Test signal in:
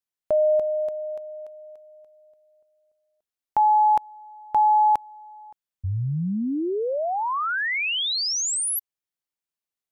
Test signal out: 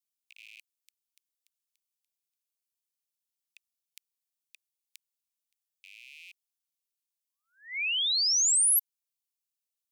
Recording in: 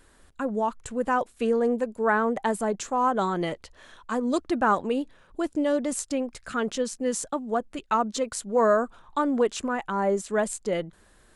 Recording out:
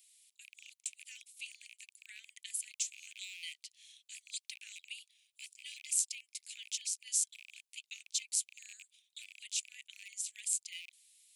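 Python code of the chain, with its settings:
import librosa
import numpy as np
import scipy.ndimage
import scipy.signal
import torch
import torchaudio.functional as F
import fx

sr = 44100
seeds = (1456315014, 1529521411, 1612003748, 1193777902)

y = fx.rattle_buzz(x, sr, strikes_db=-40.0, level_db=-32.0)
y = scipy.signal.sosfilt(scipy.signal.butter(12, 2200.0, 'highpass', fs=sr, output='sos'), y)
y = fx.high_shelf(y, sr, hz=3600.0, db=11.5)
y = y * librosa.db_to_amplitude(-8.0)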